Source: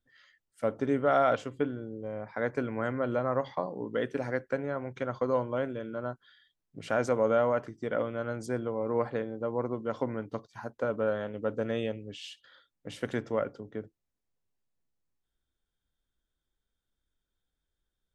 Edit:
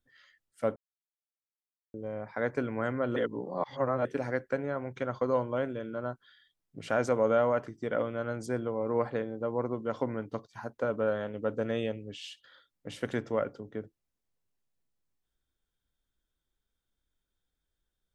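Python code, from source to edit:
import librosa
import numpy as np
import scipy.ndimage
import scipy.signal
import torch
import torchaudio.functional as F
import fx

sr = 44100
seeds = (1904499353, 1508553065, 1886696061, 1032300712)

y = fx.edit(x, sr, fx.silence(start_s=0.76, length_s=1.18),
    fx.reverse_span(start_s=3.16, length_s=0.89), tone=tone)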